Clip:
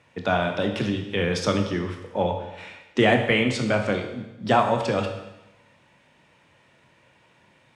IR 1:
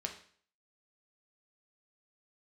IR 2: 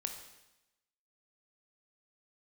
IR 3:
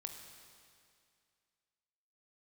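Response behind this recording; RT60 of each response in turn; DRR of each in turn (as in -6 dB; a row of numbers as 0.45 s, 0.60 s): 2; 0.50 s, 0.95 s, 2.3 s; 2.5 dB, 4.5 dB, 4.5 dB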